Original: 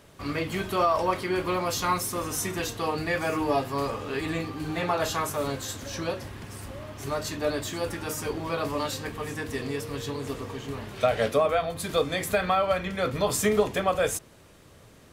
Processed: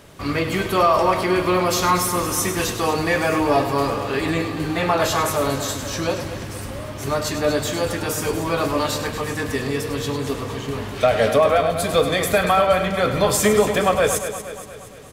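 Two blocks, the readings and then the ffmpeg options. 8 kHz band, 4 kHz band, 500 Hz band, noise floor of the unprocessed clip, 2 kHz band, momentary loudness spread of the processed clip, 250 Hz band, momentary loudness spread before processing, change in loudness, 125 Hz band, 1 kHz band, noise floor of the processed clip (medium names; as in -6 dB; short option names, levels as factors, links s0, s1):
+8.0 dB, +8.0 dB, +7.5 dB, -53 dBFS, +8.0 dB, 11 LU, +8.0 dB, 10 LU, +8.0 dB, +8.0 dB, +7.5 dB, -35 dBFS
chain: -filter_complex "[0:a]asplit=2[s0][s1];[s1]aecho=0:1:235|470|705|940|1175|1410:0.266|0.141|0.0747|0.0396|0.021|0.0111[s2];[s0][s2]amix=inputs=2:normalize=0,asoftclip=type=tanh:threshold=0.224,asplit=2[s3][s4];[s4]aecho=0:1:101:0.316[s5];[s3][s5]amix=inputs=2:normalize=0,volume=2.37"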